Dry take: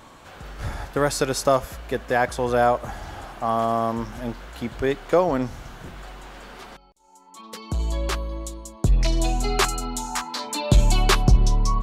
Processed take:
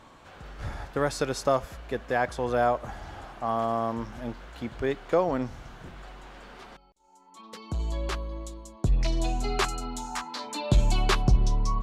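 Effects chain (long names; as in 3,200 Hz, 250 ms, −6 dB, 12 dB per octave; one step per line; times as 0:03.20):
high-shelf EQ 9,200 Hz −12 dB
level −5 dB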